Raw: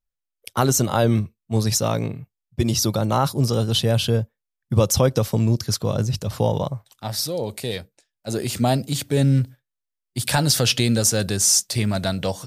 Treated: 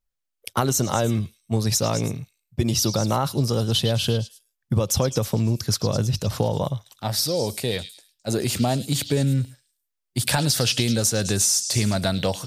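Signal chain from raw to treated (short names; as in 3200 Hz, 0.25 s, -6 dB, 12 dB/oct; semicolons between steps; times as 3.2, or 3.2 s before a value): compressor, threshold -20 dBFS, peak gain reduction 9 dB; on a send: delay with a stepping band-pass 0.106 s, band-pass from 3800 Hz, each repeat 0.7 oct, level -7 dB; on the sum: gain +2.5 dB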